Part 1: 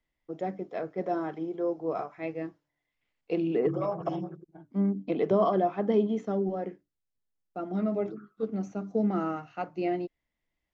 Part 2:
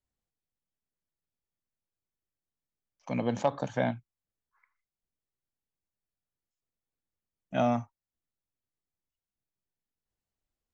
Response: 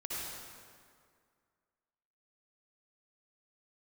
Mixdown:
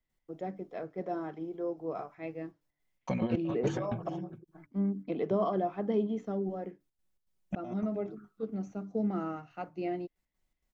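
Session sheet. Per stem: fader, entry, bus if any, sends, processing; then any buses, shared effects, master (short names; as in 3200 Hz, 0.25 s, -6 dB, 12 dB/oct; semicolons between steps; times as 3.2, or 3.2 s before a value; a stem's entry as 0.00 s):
-6.0 dB, 0.00 s, no send, no echo send, dry
-2.5 dB, 0.00 s, no send, echo send -20.5 dB, comb 5.4 ms, depth 77%; negative-ratio compressor -31 dBFS, ratio -0.5; step gate ".x.xx.xxx" 161 bpm -60 dB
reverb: off
echo: echo 0.414 s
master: low shelf 160 Hz +5.5 dB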